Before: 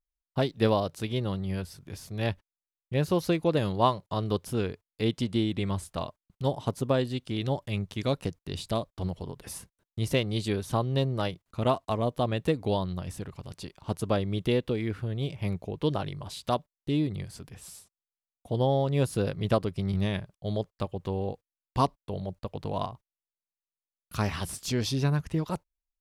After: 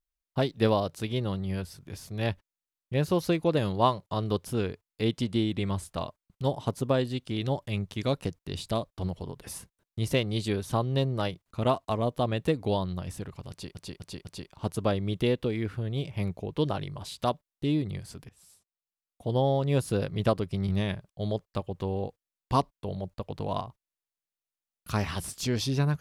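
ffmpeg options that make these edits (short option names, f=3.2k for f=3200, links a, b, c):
-filter_complex "[0:a]asplit=5[a][b][c][d][e];[a]atrim=end=13.752[f];[b]atrim=start=13.498:end=13.752[g];[c]atrim=start=13.498:end=13.752[h];[d]atrim=start=13.498:end=17.54,asetpts=PTS-STARTPTS,afade=t=out:st=4.038:d=0.004:c=hsin:silence=0.141254[i];[e]atrim=start=17.54,asetpts=PTS-STARTPTS,afade=t=in:d=1.12:silence=0.141254[j];[f][g]acrossfade=d=0.004:c1=hsin:c2=hsin[k];[k][h]acrossfade=d=0.004:c1=hsin:c2=hsin[l];[i][j]concat=n=2:v=0:a=1[m];[l][m]acrossfade=d=0.004:c1=hsin:c2=hsin"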